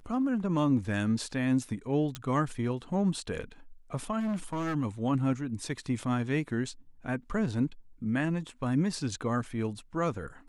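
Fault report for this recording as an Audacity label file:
2.150000	2.150000	pop -20 dBFS
4.190000	4.760000	clipped -28.5 dBFS

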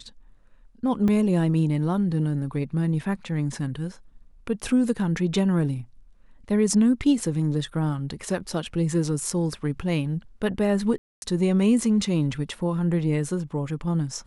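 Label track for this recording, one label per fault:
1.080000	1.080000	dropout 3.1 ms
10.980000	11.220000	dropout 241 ms

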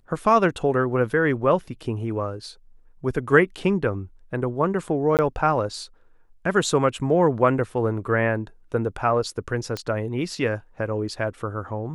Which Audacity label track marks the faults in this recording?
5.170000	5.190000	dropout 18 ms
9.770000	9.770000	pop -15 dBFS

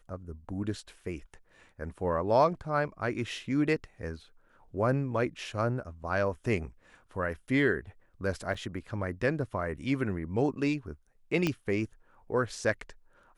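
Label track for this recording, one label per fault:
8.540000	8.540000	dropout 4.7 ms
11.470000	11.470000	pop -15 dBFS

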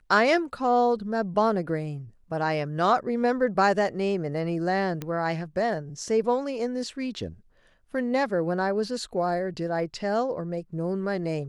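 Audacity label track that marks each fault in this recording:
5.020000	5.020000	pop -18 dBFS

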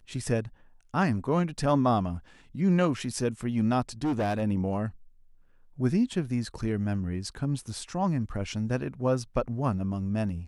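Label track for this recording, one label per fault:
4.040000	4.430000	clipped -24 dBFS

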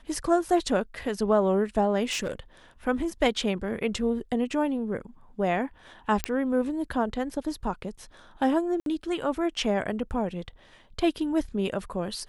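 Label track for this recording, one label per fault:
2.110000	2.340000	clipped -25 dBFS
6.240000	6.240000	pop -9 dBFS
8.800000	8.860000	dropout 62 ms

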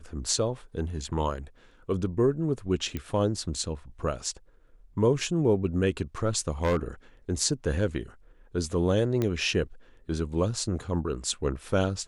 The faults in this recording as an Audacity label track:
2.970000	2.970000	pop -19 dBFS
6.630000	6.770000	clipped -20.5 dBFS
9.220000	9.220000	pop -15 dBFS

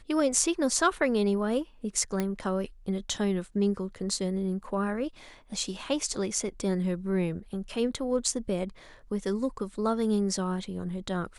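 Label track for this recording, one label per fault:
2.200000	2.200000	pop -15 dBFS

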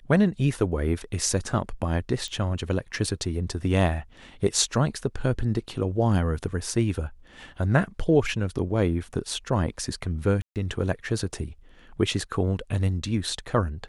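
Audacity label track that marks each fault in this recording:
2.280000	2.280000	pop -23 dBFS
10.420000	10.560000	dropout 138 ms

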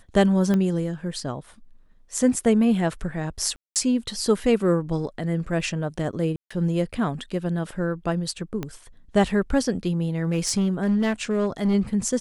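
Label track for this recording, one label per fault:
0.540000	0.540000	pop -13 dBFS
3.560000	3.760000	dropout 198 ms
6.360000	6.500000	dropout 145 ms
8.630000	8.630000	pop -16 dBFS
10.240000	11.750000	clipped -17 dBFS

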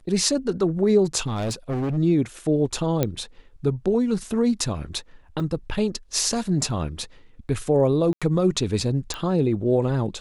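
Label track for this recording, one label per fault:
1.260000	1.980000	clipped -22.5 dBFS
3.030000	3.030000	pop -8 dBFS
5.400000	5.400000	dropout 3.1 ms
8.130000	8.220000	dropout 86 ms
9.140000	9.140000	pop -15 dBFS

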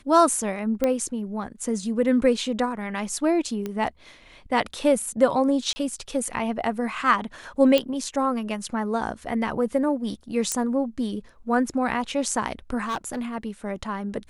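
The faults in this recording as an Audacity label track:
0.840000	0.840000	pop -10 dBFS
3.660000	3.660000	pop -17 dBFS
5.730000	5.760000	dropout 30 ms
7.780000	7.780000	pop -9 dBFS
10.520000	10.520000	pop -10 dBFS
12.840000	13.230000	clipped -23.5 dBFS

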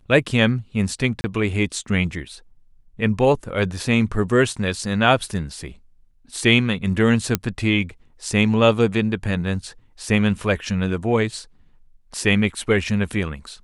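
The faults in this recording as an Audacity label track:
1.210000	1.240000	dropout 30 ms
7.350000	7.350000	pop -2 dBFS

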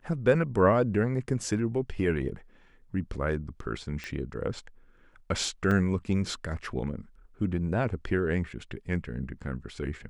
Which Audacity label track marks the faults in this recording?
4.040000	4.040000	pop -22 dBFS
5.710000	5.710000	dropout 2.8 ms

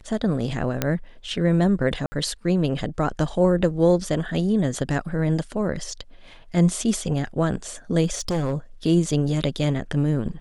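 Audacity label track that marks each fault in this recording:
0.820000	0.820000	pop -6 dBFS
2.060000	2.120000	dropout 60 ms
8.110000	8.530000	clipped -20 dBFS

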